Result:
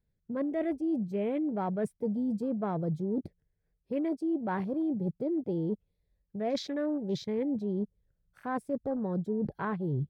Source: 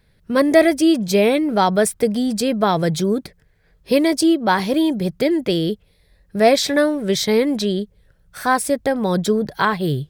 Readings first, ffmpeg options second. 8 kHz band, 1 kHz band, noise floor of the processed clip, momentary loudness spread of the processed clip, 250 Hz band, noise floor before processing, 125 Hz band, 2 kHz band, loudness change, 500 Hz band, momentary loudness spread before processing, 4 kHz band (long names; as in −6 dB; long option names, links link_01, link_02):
below −25 dB, −18.0 dB, −79 dBFS, 5 LU, −12.5 dB, −58 dBFS, −10.0 dB, −22.0 dB, −14.5 dB, −16.0 dB, 7 LU, −24.0 dB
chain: -af "afwtdn=0.0447,tiltshelf=frequency=740:gain=6.5,areverse,acompressor=threshold=-21dB:ratio=6,areverse,volume=-8dB"